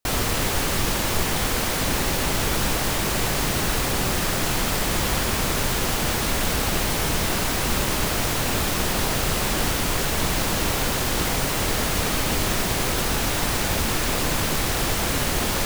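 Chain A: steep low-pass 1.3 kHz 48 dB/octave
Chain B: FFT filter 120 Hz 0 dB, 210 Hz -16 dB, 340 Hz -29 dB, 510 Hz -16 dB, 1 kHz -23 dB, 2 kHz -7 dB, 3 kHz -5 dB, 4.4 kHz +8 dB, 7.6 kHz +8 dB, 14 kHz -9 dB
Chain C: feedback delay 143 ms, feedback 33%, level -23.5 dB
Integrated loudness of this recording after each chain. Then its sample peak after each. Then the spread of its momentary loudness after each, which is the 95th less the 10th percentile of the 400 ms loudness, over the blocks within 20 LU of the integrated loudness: -27.5 LUFS, -21.0 LUFS, -22.5 LUFS; -12.0 dBFS, -9.0 dBFS, -8.0 dBFS; 1 LU, 0 LU, 0 LU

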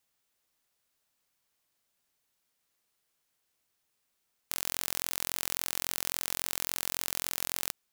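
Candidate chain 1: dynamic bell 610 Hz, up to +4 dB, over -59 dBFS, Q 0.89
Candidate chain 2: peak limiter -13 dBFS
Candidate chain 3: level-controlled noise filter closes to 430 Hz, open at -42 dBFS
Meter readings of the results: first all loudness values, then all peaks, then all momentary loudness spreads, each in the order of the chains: -32.0 LUFS, -40.5 LUFS, -33.5 LUFS; -4.5 dBFS, -13.0 dBFS, -8.5 dBFS; 1 LU, 1 LU, 3 LU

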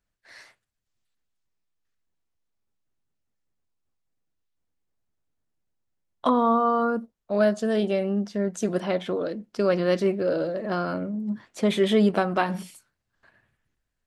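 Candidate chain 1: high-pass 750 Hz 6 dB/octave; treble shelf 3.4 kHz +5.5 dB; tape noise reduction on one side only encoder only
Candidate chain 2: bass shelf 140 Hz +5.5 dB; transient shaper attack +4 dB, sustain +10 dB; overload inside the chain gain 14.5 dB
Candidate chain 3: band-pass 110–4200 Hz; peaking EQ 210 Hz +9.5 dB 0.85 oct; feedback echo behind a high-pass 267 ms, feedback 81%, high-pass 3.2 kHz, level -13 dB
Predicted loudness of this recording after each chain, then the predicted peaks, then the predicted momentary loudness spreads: -29.5 LUFS, -23.0 LUFS, -20.0 LUFS; -10.0 dBFS, -14.5 dBFS, -5.0 dBFS; 16 LU, 8 LU, 10 LU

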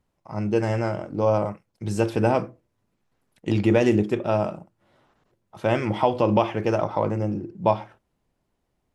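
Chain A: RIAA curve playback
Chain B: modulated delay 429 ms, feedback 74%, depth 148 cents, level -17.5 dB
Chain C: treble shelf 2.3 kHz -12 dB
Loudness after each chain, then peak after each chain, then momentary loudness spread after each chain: -17.5 LUFS, -24.0 LUFS, -24.5 LUFS; -1.5 dBFS, -5.5 dBFS, -7.0 dBFS; 11 LU, 19 LU, 10 LU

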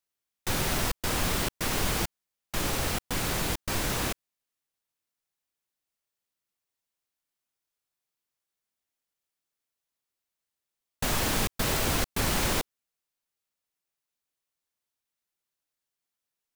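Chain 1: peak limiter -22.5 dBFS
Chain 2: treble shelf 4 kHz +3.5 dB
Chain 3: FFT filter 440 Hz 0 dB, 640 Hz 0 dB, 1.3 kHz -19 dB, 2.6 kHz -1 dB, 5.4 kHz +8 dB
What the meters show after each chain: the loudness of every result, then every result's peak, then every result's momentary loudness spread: -33.0 LUFS, -27.0 LUFS, -24.0 LUFS; -22.5 dBFS, -13.0 dBFS, -11.0 dBFS; 6 LU, 7 LU, 7 LU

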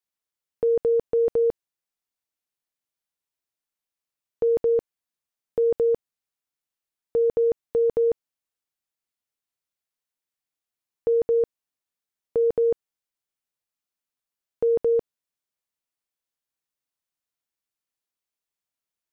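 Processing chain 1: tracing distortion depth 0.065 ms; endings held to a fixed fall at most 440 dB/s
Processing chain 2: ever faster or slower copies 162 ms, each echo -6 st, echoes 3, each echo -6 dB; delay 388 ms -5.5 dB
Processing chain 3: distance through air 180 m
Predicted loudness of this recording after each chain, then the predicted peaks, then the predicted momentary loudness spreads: -33.0 LUFS, -25.0 LUFS, -24.5 LUFS; -16.5 dBFS, -10.5 dBFS, -17.0 dBFS; 3 LU, 18 LU, 8 LU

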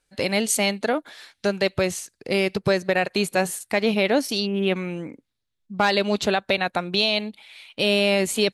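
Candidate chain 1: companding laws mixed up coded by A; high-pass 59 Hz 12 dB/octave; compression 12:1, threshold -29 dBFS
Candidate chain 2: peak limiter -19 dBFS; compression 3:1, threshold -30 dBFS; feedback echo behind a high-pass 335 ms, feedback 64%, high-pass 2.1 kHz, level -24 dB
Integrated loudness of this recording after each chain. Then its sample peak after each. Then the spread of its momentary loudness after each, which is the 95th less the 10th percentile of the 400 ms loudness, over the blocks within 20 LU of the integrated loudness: -34.5 LUFS, -33.5 LUFS; -14.0 dBFS, -19.0 dBFS; 7 LU, 6 LU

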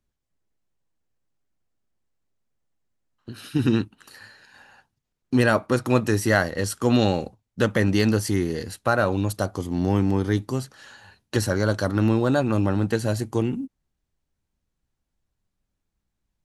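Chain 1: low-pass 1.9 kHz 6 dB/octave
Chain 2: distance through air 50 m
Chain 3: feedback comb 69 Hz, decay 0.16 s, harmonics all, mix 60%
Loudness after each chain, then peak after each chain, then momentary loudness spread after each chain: -23.5 LUFS, -23.5 LUFS, -26.5 LUFS; -6.0 dBFS, -5.5 dBFS, -7.5 dBFS; 8 LU, 9 LU, 9 LU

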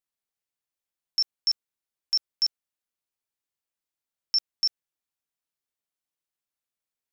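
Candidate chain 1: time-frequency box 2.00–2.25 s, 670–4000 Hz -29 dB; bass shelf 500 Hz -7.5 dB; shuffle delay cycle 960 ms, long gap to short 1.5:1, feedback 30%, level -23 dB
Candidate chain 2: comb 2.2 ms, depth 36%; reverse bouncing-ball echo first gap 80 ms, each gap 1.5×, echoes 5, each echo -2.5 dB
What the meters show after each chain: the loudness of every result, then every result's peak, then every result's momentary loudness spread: -27.0 LUFS, -23.5 LUFS; -17.5 dBFS, -14.5 dBFS; 3 LU, 17 LU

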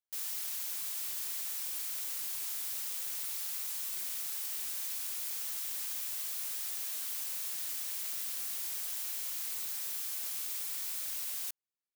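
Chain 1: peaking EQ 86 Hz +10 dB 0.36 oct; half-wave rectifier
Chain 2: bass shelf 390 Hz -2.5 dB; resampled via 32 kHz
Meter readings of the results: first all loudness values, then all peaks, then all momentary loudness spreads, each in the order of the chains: -39.5 LUFS, -38.0 LUFS; -24.5 dBFS, -27.0 dBFS; 0 LU, 0 LU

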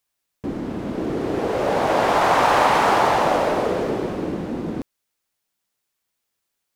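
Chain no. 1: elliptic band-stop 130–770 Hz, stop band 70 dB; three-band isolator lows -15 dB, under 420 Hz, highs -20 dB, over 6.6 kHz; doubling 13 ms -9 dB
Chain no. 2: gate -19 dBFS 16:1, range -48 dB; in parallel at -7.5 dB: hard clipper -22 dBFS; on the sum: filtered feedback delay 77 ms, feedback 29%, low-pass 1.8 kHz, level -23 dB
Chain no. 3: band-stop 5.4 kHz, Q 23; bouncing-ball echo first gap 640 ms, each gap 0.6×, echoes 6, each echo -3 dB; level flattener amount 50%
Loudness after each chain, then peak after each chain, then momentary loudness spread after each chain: -21.0 LUFS, -17.0 LUFS, -16.5 LUFS; -5.0 dBFS, -4.0 dBFS, -2.5 dBFS; 22 LU, 14 LU, 10 LU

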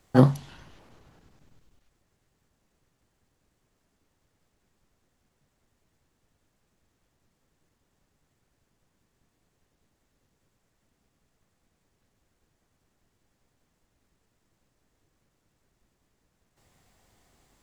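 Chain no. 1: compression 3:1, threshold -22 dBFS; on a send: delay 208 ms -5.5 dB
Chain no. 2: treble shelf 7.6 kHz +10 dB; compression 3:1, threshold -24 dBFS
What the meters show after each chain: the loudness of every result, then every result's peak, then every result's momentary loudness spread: -30.0 LUFS, -31.0 LUFS; -12.0 dBFS, -13.0 dBFS; 14 LU, 18 LU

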